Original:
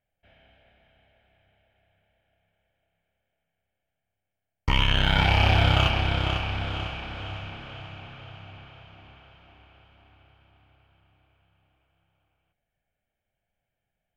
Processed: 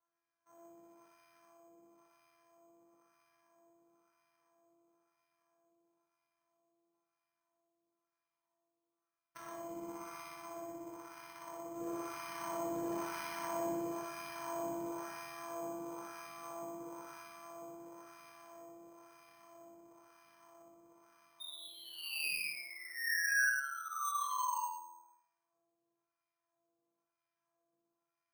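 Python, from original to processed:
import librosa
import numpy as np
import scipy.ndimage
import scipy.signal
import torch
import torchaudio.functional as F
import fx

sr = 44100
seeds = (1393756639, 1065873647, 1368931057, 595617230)

p1 = np.r_[np.sort(x[:len(x) // 128 * 128].reshape(-1, 128), axis=1).ravel(), x[len(x) // 128 * 128:]]
p2 = fx.peak_eq(p1, sr, hz=1100.0, db=9.0, octaves=0.76)
p3 = fx.over_compress(p2, sr, threshold_db=-26.0, ratio=-0.5)
p4 = fx.spec_paint(p3, sr, seeds[0], shape='fall', start_s=10.7, length_s=1.64, low_hz=890.0, high_hz=3700.0, level_db=-24.0)
p5 = fx.resonator_bank(p4, sr, root=39, chord='fifth', decay_s=0.38)
p6 = 10.0 ** (-37.0 / 20.0) * np.tanh(p5 / 10.0 ** (-37.0 / 20.0))
p7 = fx.stretch_grains(p6, sr, factor=2.0, grain_ms=24.0)
p8 = fx.filter_lfo_bandpass(p7, sr, shape='sine', hz=1.0, low_hz=410.0, high_hz=2000.0, q=1.4)
p9 = np.repeat(p8[::6], 6)[:len(p8)]
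p10 = p9 + fx.echo_multitap(p9, sr, ms=(59, 80, 120), db=(-18.5, -7.0, -5.5), dry=0)
p11 = fx.rev_fdn(p10, sr, rt60_s=0.7, lf_ratio=1.0, hf_ratio=0.65, size_ms=13.0, drr_db=7.0)
y = p11 * 10.0 ** (5.5 / 20.0)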